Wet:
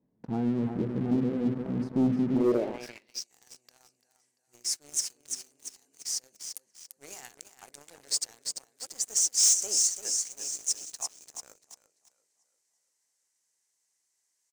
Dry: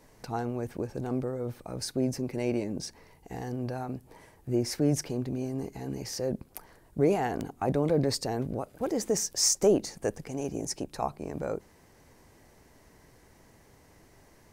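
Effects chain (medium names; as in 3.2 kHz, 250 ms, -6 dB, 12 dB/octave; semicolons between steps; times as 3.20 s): de-hum 50.53 Hz, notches 13; on a send: feedback delay 342 ms, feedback 50%, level -6.5 dB; on the sum: band-pass sweep 210 Hz -> 7.5 kHz, 2.33–3.27 s; waveshaping leveller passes 3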